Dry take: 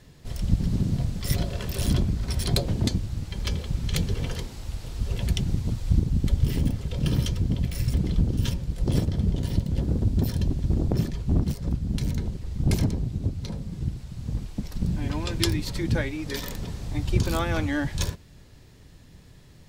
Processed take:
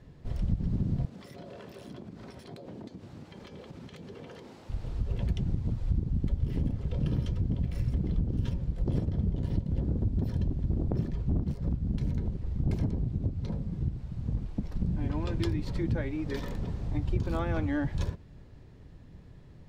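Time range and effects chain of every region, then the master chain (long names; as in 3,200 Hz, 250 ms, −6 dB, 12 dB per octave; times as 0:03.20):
0:01.05–0:04.70: high-pass filter 270 Hz + downward compressor, threshold −39 dBFS
whole clip: low-pass filter 1,000 Hz 6 dB per octave; downward compressor 3 to 1, threshold −26 dBFS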